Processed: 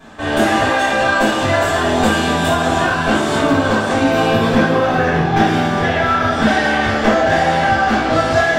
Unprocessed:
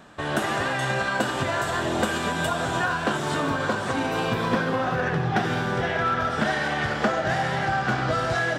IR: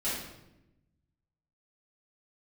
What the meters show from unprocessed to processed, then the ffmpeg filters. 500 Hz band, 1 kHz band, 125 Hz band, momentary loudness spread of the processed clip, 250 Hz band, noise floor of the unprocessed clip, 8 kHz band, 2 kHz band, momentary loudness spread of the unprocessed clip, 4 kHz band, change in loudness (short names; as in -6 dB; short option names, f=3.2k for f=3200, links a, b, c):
+11.0 dB, +10.0 dB, +7.5 dB, 2 LU, +12.0 dB, -29 dBFS, +8.5 dB, +9.0 dB, 2 LU, +9.5 dB, +10.0 dB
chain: -filter_complex "[0:a]aeval=exprs='clip(val(0),-1,0.119)':c=same[a];[1:a]atrim=start_sample=2205,afade=t=out:st=0.16:d=0.01,atrim=end_sample=7497,asetrate=52920,aresample=44100[b];[a][b]afir=irnorm=-1:irlink=0,volume=5dB"